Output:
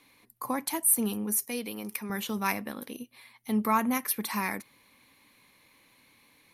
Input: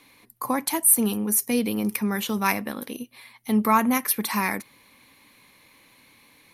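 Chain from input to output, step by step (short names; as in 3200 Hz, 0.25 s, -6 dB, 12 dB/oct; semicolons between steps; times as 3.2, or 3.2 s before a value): 1.45–2.1 low shelf 320 Hz -11.5 dB; gain -6 dB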